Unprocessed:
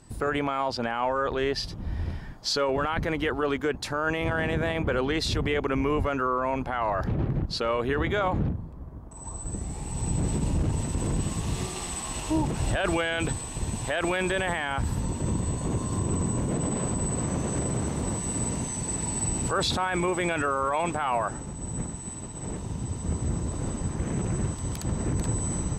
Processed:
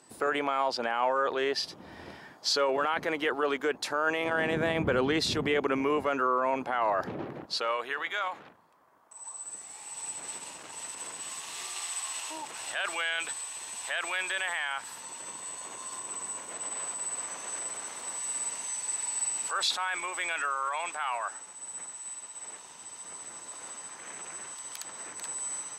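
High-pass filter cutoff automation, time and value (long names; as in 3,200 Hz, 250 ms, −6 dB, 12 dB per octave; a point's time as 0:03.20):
0:04.23 380 Hz
0:04.88 110 Hz
0:05.92 310 Hz
0:07.06 310 Hz
0:08.10 1,200 Hz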